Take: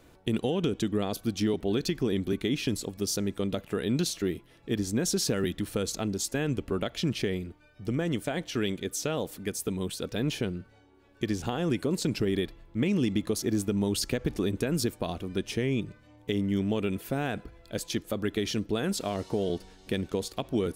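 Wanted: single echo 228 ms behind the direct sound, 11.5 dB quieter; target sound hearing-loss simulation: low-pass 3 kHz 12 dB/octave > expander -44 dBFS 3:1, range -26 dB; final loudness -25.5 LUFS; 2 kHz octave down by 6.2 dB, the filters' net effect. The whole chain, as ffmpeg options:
-af "lowpass=3000,equalizer=f=2000:t=o:g=-7,aecho=1:1:228:0.266,agate=range=0.0501:threshold=0.00631:ratio=3,volume=1.88"

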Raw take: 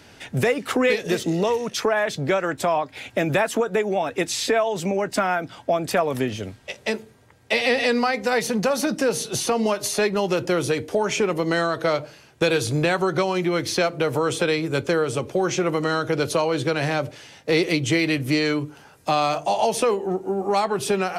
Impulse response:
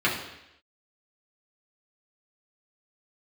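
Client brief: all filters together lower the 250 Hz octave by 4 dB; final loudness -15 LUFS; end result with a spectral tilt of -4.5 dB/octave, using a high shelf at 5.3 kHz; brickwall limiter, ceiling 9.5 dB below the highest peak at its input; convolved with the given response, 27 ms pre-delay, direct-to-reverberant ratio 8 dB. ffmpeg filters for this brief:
-filter_complex "[0:a]equalizer=f=250:t=o:g=-6,highshelf=f=5300:g=-6.5,alimiter=limit=0.119:level=0:latency=1,asplit=2[s0][s1];[1:a]atrim=start_sample=2205,adelay=27[s2];[s1][s2]afir=irnorm=-1:irlink=0,volume=0.0708[s3];[s0][s3]amix=inputs=2:normalize=0,volume=4.22"

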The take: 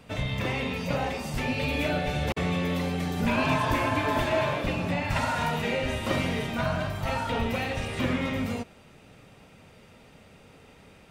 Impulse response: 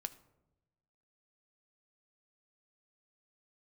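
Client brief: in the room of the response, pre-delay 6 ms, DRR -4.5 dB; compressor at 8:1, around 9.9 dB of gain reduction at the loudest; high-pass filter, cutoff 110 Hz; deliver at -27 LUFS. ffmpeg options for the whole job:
-filter_complex "[0:a]highpass=110,acompressor=threshold=0.0251:ratio=8,asplit=2[s0][s1];[1:a]atrim=start_sample=2205,adelay=6[s2];[s1][s2]afir=irnorm=-1:irlink=0,volume=2.24[s3];[s0][s3]amix=inputs=2:normalize=0,volume=1.33"

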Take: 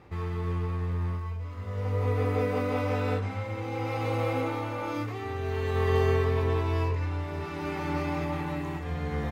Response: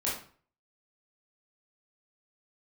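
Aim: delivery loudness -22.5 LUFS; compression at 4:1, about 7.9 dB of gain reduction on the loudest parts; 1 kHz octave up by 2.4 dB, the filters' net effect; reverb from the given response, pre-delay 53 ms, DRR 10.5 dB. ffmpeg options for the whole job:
-filter_complex "[0:a]equalizer=f=1000:t=o:g=3,acompressor=threshold=0.0355:ratio=4,asplit=2[s0][s1];[1:a]atrim=start_sample=2205,adelay=53[s2];[s1][s2]afir=irnorm=-1:irlink=0,volume=0.141[s3];[s0][s3]amix=inputs=2:normalize=0,volume=3.35"

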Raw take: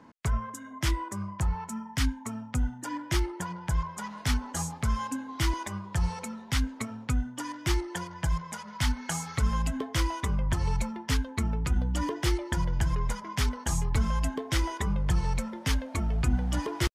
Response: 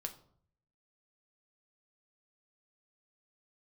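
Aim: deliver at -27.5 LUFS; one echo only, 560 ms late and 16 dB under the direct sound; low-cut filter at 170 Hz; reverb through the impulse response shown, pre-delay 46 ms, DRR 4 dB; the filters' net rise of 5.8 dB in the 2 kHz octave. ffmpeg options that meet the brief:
-filter_complex "[0:a]highpass=170,equalizer=f=2000:t=o:g=7,aecho=1:1:560:0.158,asplit=2[s0][s1];[1:a]atrim=start_sample=2205,adelay=46[s2];[s1][s2]afir=irnorm=-1:irlink=0,volume=0.794[s3];[s0][s3]amix=inputs=2:normalize=0,volume=1.58"

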